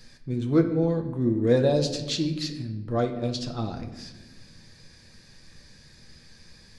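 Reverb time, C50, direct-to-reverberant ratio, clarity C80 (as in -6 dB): 1.2 s, 9.0 dB, 3.5 dB, 11.5 dB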